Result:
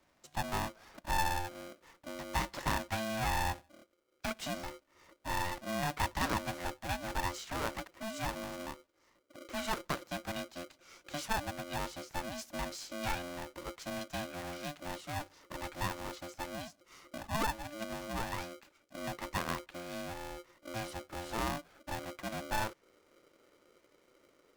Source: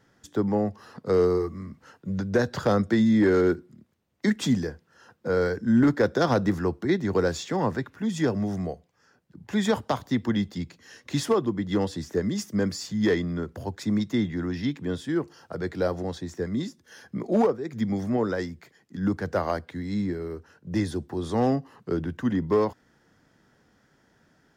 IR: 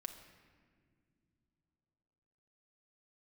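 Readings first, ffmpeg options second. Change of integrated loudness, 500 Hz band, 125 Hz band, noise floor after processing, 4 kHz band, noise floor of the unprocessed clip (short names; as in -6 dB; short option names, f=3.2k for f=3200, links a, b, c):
-12.0 dB, -16.5 dB, -13.5 dB, -72 dBFS, -3.5 dB, -65 dBFS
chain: -filter_complex "[0:a]asubboost=boost=8.5:cutoff=91,acrossover=split=260|2500[a][b][c];[a]acompressor=threshold=-38dB:ratio=6[d];[c]asoftclip=type=tanh:threshold=-29.5dB[e];[d][b][e]amix=inputs=3:normalize=0,aeval=exprs='val(0)*sgn(sin(2*PI*440*n/s))':c=same,volume=-8dB"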